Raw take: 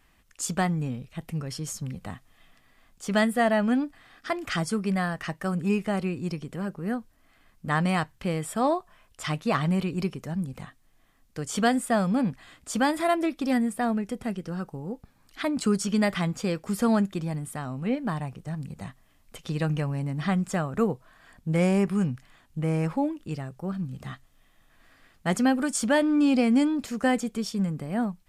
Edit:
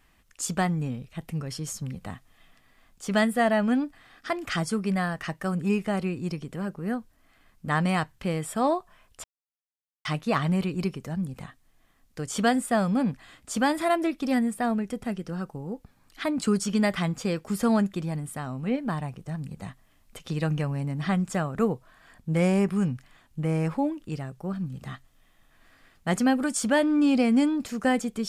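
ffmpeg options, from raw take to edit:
-filter_complex "[0:a]asplit=2[a][b];[a]atrim=end=9.24,asetpts=PTS-STARTPTS,afade=t=out:st=9.236:d=0.004:c=hsin,apad=pad_dur=0.81[c];[b]atrim=start=9.24,asetpts=PTS-STARTPTS,afade=t=in:d=0.004:c=hsin[d];[c][d]concat=n=2:v=0:a=1"

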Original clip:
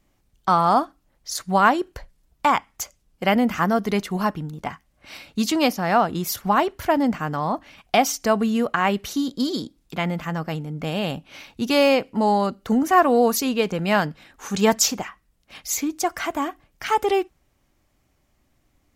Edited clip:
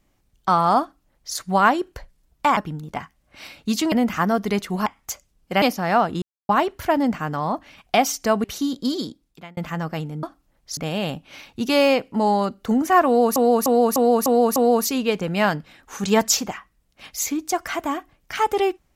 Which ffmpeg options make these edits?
-filter_complex "[0:a]asplit=16[a][b][c][d][e][f][g][h][i][j][k][l][m][n][o][p];[a]atrim=end=2.572[q];[b]atrim=start=4.268:end=5.622[r];[c]atrim=start=3.328:end=4.272[s];[d]atrim=start=2.568:end=3.332[t];[e]atrim=start=5.618:end=6.22,asetpts=PTS-STARTPTS,afade=t=out:st=0.598:d=0.004:c=hsin[u];[f]atrim=start=6.22:end=6.49,asetpts=PTS-STARTPTS,volume=0[v];[g]atrim=start=6.49:end=8.442,asetpts=PTS-STARTPTS,afade=t=in:d=0.004:c=hsin[w];[h]atrim=start=8.988:end=10.12,asetpts=PTS-STARTPTS,afade=t=out:st=0.512:d=0.62[x];[i]atrim=start=10.12:end=10.782,asetpts=PTS-STARTPTS,afade=t=in:d=0.004:c=hsin[y];[j]atrim=start=0.808:end=1.352[z];[k]atrim=start=10.778:end=13.372[aa];[l]atrim=start=13.068:end=13.372[ab];[m]atrim=start=13.068:end=13.372[ac];[n]atrim=start=13.068:end=13.372[ad];[o]atrim=start=13.068:end=13.372[ae];[p]atrim=start=13.068[af];[q][r]acrossfade=d=0.004:c1=hsin:c2=hsin[ag];[ag][s]acrossfade=d=0.004:c1=hsin:c2=hsin[ah];[ah][t]acrossfade=d=0.004:c1=hsin:c2=hsin[ai];[u][v][w]concat=n=3:v=0:a=1[aj];[ai][aj]acrossfade=d=0.004:c1=hsin:c2=hsin[ak];[x][y]concat=n=2:v=0:a=1[al];[ak][al]acrossfade=d=0.004:c1=hsin:c2=hsin[am];[am][z]acrossfade=d=0.004:c1=hsin:c2=hsin[an];[an][aa]acrossfade=d=0.004:c1=hsin:c2=hsin[ao];[ao][ab]acrossfade=d=0.004:c1=hsin:c2=hsin[ap];[ap][ac]acrossfade=d=0.004:c1=hsin:c2=hsin[aq];[aq][ad]acrossfade=d=0.004:c1=hsin:c2=hsin[ar];[ar][ae]acrossfade=d=0.004:c1=hsin:c2=hsin[as];[as][af]acrossfade=d=0.004:c1=hsin:c2=hsin"

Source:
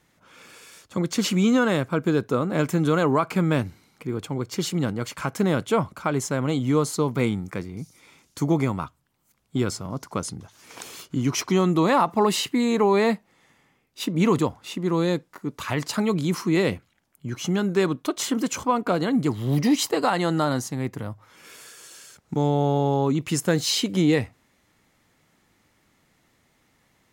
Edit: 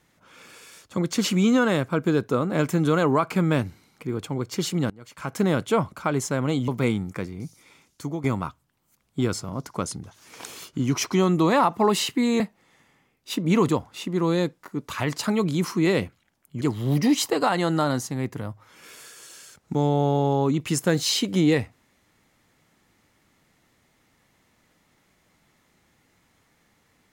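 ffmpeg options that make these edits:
-filter_complex "[0:a]asplit=6[a][b][c][d][e][f];[a]atrim=end=4.9,asetpts=PTS-STARTPTS,afade=t=out:st=4.896:d=0.004:c=hsin:silence=0.1[g];[b]atrim=start=4.9:end=6.682,asetpts=PTS-STARTPTS,afade=t=in:d=0.47:c=qua:silence=0.1[h];[c]atrim=start=7.048:end=8.61,asetpts=PTS-STARTPTS,afade=t=out:st=0.722:d=0.84:c=qsin:silence=0.211349[i];[d]atrim=start=8.61:end=12.772,asetpts=PTS-STARTPTS,afade=t=in:d=0.004:c=hsin:silence=0.211349[j];[e]atrim=start=13.098:end=17.312[k];[f]atrim=start=19.218[l];[g][h]concat=n=2:v=0:a=1[m];[i][j]concat=n=2:v=0:a=1[n];[m][n]acrossfade=d=0.004:c1=hsin:c2=hsin[o];[o][k]acrossfade=d=0.004:c1=hsin:c2=hsin[p];[p][l]acrossfade=d=0.004:c1=hsin:c2=hsin"

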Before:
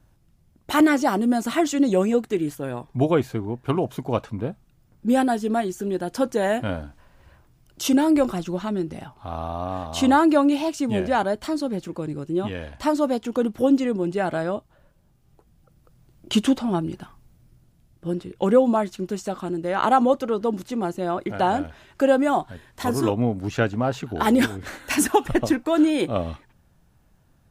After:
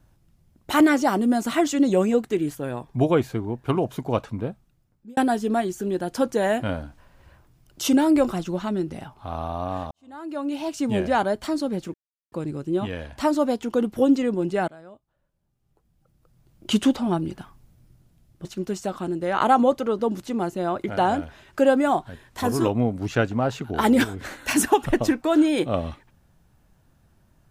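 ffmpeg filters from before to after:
-filter_complex "[0:a]asplit=6[a][b][c][d][e][f];[a]atrim=end=5.17,asetpts=PTS-STARTPTS,afade=t=out:st=4.36:d=0.81[g];[b]atrim=start=5.17:end=9.91,asetpts=PTS-STARTPTS,afade=t=in:d=0.004:c=hsin,afade=t=out:st=4.736:d=0.004:c=hsin[h];[c]atrim=start=9.91:end=11.94,asetpts=PTS-STARTPTS,afade=t=in:d=0.95:c=qua,afade=t=out:st=2.026:d=0.004:c=hsin,apad=pad_dur=0.38[i];[d]atrim=start=11.94:end=14.3,asetpts=PTS-STARTPTS,afade=t=in:d=0.004:c=hsin,afade=t=out:st=2.356:d=0.004:c=hsin:silence=0.1[j];[e]atrim=start=14.3:end=18.072,asetpts=PTS-STARTPTS,afade=t=in:d=2.17:c=qua:silence=0.1[k];[f]atrim=start=18.868[l];[g][h][i][j][k]concat=n=5:v=0:a=1[m];[m][l]acrossfade=d=0.004:c1=hsin:c2=hsin"

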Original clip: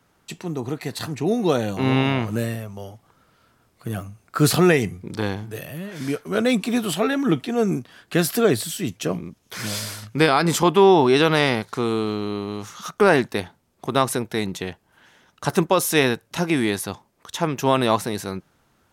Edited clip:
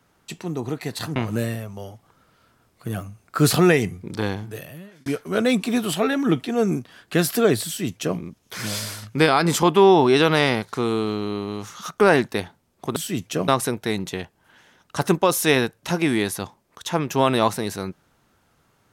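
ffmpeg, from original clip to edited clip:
-filter_complex "[0:a]asplit=5[a][b][c][d][e];[a]atrim=end=1.162[f];[b]atrim=start=2.158:end=6.06,asetpts=PTS-STARTPTS,afade=t=out:st=3.292:d=0.61[g];[c]atrim=start=6.06:end=13.962,asetpts=PTS-STARTPTS,afade=t=in:d=0.004:c=hsin[h];[d]atrim=start=8.658:end=9.182[i];[e]atrim=start=13.958[j];[g][h]concat=n=2:v=0:a=1[k];[f][k]acrossfade=d=0.004:c1=hsin:c2=hsin[l];[l][i]acrossfade=d=0.004:c1=hsin:c2=hsin[m];[m][j]acrossfade=d=0.004:c1=hsin:c2=hsin"

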